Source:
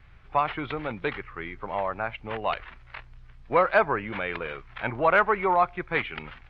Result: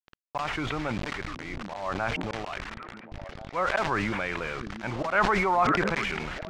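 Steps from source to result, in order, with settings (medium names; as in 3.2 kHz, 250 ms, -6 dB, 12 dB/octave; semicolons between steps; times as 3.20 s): dynamic bell 460 Hz, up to -7 dB, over -41 dBFS, Q 3.9; in parallel at +2 dB: compression 10:1, threshold -34 dBFS, peak gain reduction 18.5 dB; on the sum: slow attack 160 ms; word length cut 6-bit, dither none; distance through air 130 m; repeats whose band climbs or falls 692 ms, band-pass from 220 Hz, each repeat 1.4 oct, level -10 dB; decay stretcher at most 21 dB/s; trim -3 dB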